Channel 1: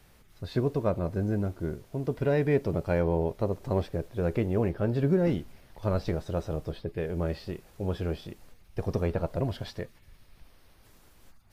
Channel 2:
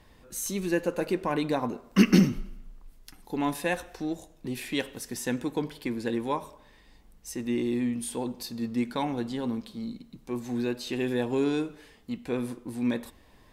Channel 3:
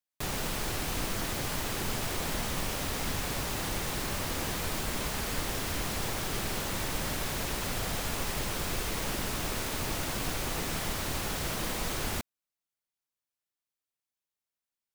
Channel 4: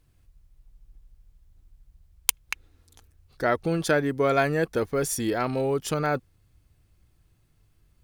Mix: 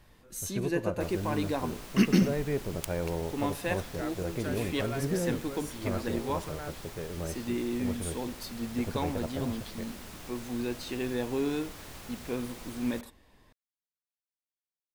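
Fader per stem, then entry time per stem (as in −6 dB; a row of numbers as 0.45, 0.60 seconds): −6.5, −4.0, −12.5, −16.5 decibels; 0.00, 0.00, 0.80, 0.55 seconds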